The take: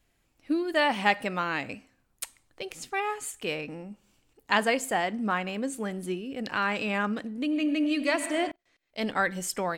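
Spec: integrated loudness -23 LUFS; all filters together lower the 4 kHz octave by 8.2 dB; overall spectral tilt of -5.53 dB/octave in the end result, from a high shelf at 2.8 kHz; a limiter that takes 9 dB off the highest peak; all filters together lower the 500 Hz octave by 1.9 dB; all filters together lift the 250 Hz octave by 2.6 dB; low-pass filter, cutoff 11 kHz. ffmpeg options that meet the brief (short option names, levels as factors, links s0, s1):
-af "lowpass=11000,equalizer=f=250:t=o:g=4.5,equalizer=f=500:t=o:g=-3.5,highshelf=f=2800:g=-5.5,equalizer=f=4000:t=o:g=-8,volume=2.51,alimiter=limit=0.224:level=0:latency=1"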